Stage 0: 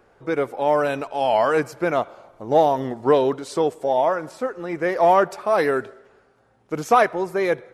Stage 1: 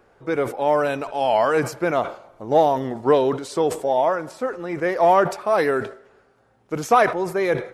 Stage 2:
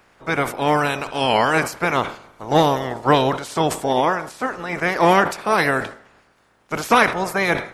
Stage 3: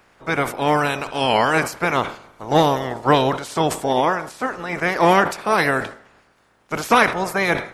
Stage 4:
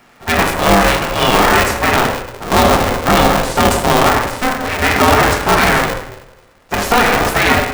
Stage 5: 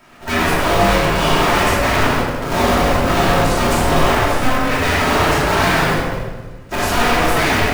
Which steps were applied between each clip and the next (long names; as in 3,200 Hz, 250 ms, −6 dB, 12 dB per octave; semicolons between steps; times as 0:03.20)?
level that may fall only so fast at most 130 dB per second
ceiling on every frequency bin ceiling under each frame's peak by 18 dB; level +1.5 dB
no processing that can be heard
convolution reverb RT60 0.85 s, pre-delay 5 ms, DRR 0 dB; brickwall limiter −6 dBFS, peak gain reduction 7.5 dB; ring modulator with a square carrier 250 Hz; level +4.5 dB
soft clipping −16 dBFS, distortion −7 dB; rectangular room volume 650 cubic metres, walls mixed, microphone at 2.8 metres; level −3.5 dB